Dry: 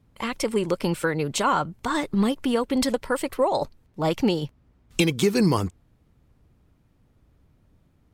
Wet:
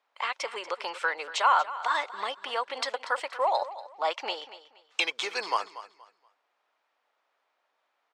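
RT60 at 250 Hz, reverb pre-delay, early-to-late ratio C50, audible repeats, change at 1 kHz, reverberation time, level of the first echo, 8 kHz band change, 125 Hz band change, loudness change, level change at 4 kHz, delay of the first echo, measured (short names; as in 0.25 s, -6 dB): none, none, none, 2, +1.0 dB, none, -15.0 dB, -9.5 dB, under -40 dB, -5.0 dB, -1.0 dB, 0.237 s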